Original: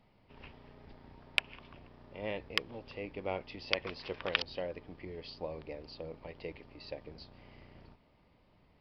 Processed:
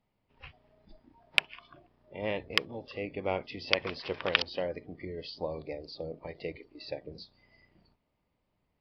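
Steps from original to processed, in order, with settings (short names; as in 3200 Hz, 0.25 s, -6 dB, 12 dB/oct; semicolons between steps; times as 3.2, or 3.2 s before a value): spectral noise reduction 17 dB; gain +5 dB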